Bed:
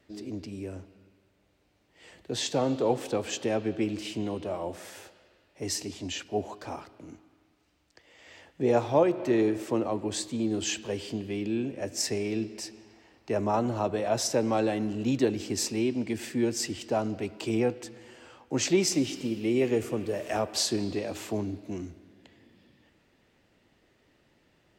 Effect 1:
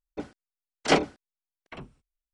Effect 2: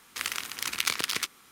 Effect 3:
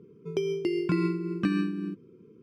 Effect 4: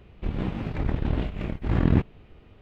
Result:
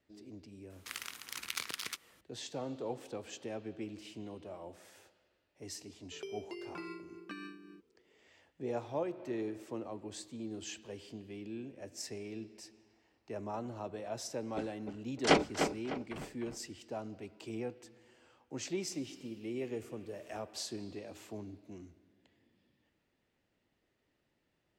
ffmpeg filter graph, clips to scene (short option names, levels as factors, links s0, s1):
-filter_complex "[0:a]volume=0.211[s0];[3:a]highpass=490[s1];[1:a]asplit=2[s2][s3];[s3]adelay=302,lowpass=f=3400:p=1,volume=0.473,asplit=2[s4][s5];[s5]adelay=302,lowpass=f=3400:p=1,volume=0.39,asplit=2[s6][s7];[s7]adelay=302,lowpass=f=3400:p=1,volume=0.39,asplit=2[s8][s9];[s9]adelay=302,lowpass=f=3400:p=1,volume=0.39,asplit=2[s10][s11];[s11]adelay=302,lowpass=f=3400:p=1,volume=0.39[s12];[s2][s4][s6][s8][s10][s12]amix=inputs=6:normalize=0[s13];[2:a]atrim=end=1.51,asetpts=PTS-STARTPTS,volume=0.282,afade=t=in:d=0.004:c=hsin,afade=t=out:st=1.506:d=0.004:c=hsin,adelay=700[s14];[s1]atrim=end=2.42,asetpts=PTS-STARTPTS,volume=0.299,afade=t=in:d=0.004:c=hsin,afade=t=out:st=2.416:d=0.004:c=hsin,adelay=5860[s15];[s13]atrim=end=2.33,asetpts=PTS-STARTPTS,volume=0.596,afade=t=in:d=0.004:c=hsin,afade=t=out:st=2.326:d=0.004:c=hsin,adelay=14390[s16];[s0][s14][s15][s16]amix=inputs=4:normalize=0"